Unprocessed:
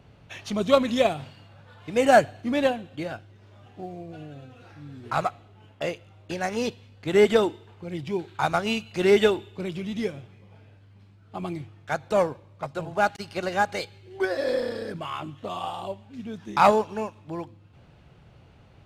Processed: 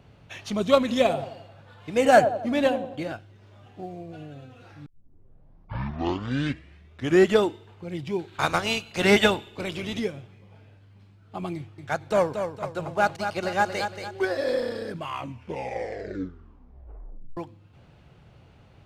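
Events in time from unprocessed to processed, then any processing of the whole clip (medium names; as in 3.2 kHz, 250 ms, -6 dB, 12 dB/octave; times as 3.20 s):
0.79–3.12 s: feedback echo behind a band-pass 88 ms, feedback 47%, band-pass 480 Hz, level -8 dB
4.86 s: tape start 2.60 s
8.32–9.98 s: spectral peaks clipped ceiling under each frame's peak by 13 dB
11.55–14.41 s: feedback delay 230 ms, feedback 39%, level -7.5 dB
15.00 s: tape stop 2.37 s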